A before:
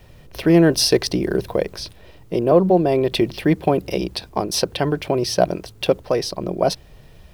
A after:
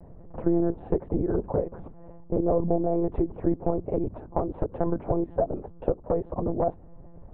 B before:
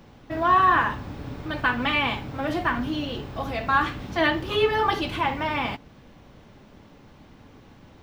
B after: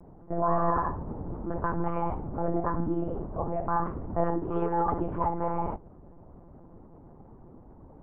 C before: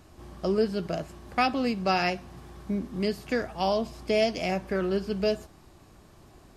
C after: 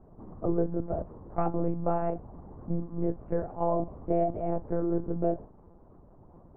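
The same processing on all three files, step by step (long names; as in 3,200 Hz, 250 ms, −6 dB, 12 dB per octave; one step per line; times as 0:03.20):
low-pass filter 1,000 Hz 24 dB per octave
downward compressor 5 to 1, threshold −21 dBFS
one-pitch LPC vocoder at 8 kHz 170 Hz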